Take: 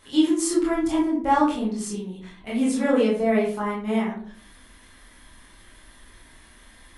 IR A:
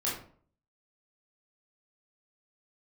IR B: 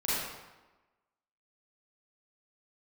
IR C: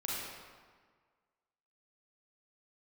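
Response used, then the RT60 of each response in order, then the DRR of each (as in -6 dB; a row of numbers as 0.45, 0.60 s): A; 0.50, 1.1, 1.6 s; -7.0, -10.5, -6.0 dB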